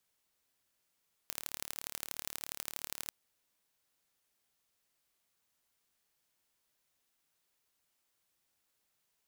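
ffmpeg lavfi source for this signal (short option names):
-f lavfi -i "aevalsrc='0.316*eq(mod(n,1195),0)*(0.5+0.5*eq(mod(n,3585),0))':d=1.79:s=44100"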